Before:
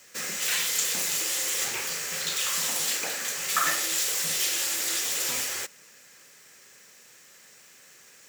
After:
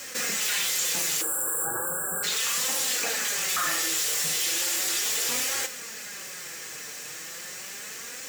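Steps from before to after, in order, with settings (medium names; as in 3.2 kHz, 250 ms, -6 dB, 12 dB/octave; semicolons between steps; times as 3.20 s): spectral selection erased 1.21–2.23 s, 1.7–7.3 kHz; in parallel at -2 dB: peak limiter -21.5 dBFS, peak gain reduction 10 dB; on the sum: flange 0.36 Hz, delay 3.6 ms, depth 3.3 ms, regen +41%; hard clipper -22 dBFS, distortion -19 dB; reverberation, pre-delay 3 ms, DRR 10.5 dB; level flattener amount 50%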